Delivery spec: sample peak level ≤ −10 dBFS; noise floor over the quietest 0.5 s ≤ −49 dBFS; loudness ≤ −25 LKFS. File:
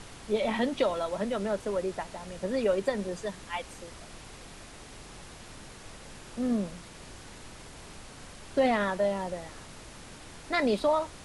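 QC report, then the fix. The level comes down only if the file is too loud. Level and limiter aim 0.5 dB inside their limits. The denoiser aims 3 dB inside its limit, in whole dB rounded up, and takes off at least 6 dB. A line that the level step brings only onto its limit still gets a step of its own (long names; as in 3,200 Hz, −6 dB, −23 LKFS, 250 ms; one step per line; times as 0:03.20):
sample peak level −15.0 dBFS: in spec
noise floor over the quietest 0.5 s −47 dBFS: out of spec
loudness −30.0 LKFS: in spec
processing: broadband denoise 6 dB, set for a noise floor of −47 dBFS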